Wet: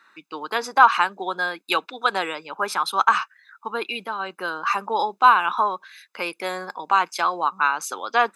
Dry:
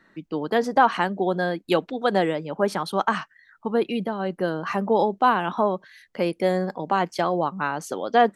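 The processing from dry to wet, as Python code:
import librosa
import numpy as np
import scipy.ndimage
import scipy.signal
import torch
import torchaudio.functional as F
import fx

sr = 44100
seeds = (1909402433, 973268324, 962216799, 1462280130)

y = scipy.signal.sosfilt(scipy.signal.butter(2, 830.0, 'highpass', fs=sr, output='sos'), x)
y = y + 0.61 * np.pad(y, (int(0.8 * sr / 1000.0), 0))[:len(y)]
y = y * 10.0 ** (5.5 / 20.0)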